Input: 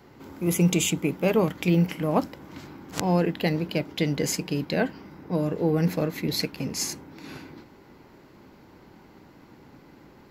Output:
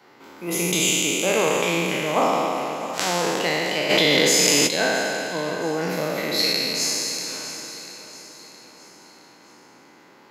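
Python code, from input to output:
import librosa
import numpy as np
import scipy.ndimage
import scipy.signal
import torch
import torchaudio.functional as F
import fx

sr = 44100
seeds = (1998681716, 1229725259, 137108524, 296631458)

y = fx.spec_trails(x, sr, decay_s=2.79)
y = fx.weighting(y, sr, curve='A')
y = fx.echo_feedback(y, sr, ms=667, feedback_pct=46, wet_db=-13.5)
y = fx.env_flatten(y, sr, amount_pct=100, at=(3.89, 4.66), fade=0.02)
y = y * 10.0 ** (1.0 / 20.0)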